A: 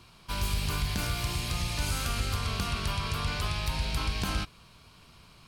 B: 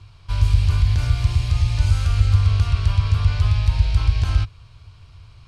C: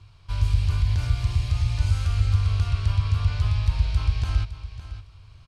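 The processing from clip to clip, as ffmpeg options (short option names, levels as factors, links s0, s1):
-af "lowpass=6800,lowshelf=f=140:t=q:w=3:g=11.5"
-af "aecho=1:1:560|1120:0.224|0.0358,volume=0.562"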